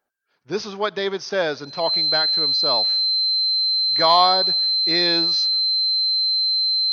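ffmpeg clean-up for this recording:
-af "bandreject=f=4100:w=30"

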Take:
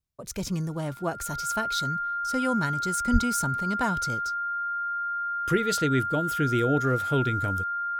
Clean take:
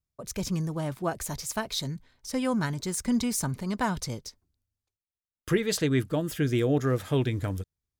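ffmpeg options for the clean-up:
-filter_complex "[0:a]bandreject=f=1400:w=30,asplit=3[s0][s1][s2];[s0]afade=t=out:st=3.12:d=0.02[s3];[s1]highpass=f=140:w=0.5412,highpass=f=140:w=1.3066,afade=t=in:st=3.12:d=0.02,afade=t=out:st=3.24:d=0.02[s4];[s2]afade=t=in:st=3.24:d=0.02[s5];[s3][s4][s5]amix=inputs=3:normalize=0"

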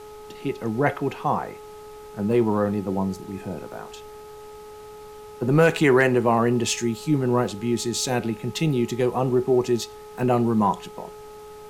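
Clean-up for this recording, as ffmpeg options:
-af "bandreject=f=423:t=h:w=4,bandreject=f=846:t=h:w=4,bandreject=f=1269:t=h:w=4,agate=range=0.0891:threshold=0.0224"

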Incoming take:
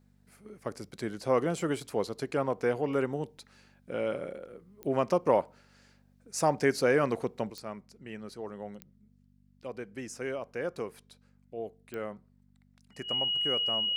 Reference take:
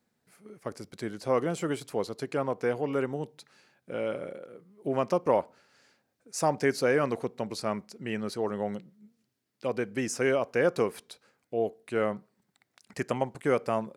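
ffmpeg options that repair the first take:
-af "adeclick=t=4,bandreject=f=48.7:t=h:w=4,bandreject=f=97.4:t=h:w=4,bandreject=f=146.1:t=h:w=4,bandreject=f=194.8:t=h:w=4,bandreject=f=243.5:t=h:w=4,bandreject=f=2900:w=30,asetnsamples=n=441:p=0,asendcmd='7.5 volume volume 9.5dB',volume=1"

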